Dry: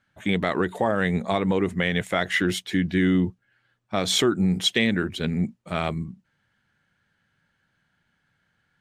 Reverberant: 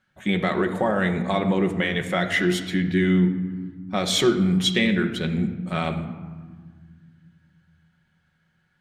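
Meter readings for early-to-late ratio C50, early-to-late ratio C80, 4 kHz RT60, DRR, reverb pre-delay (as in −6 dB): 9.5 dB, 11.0 dB, 0.80 s, 4.0 dB, 5 ms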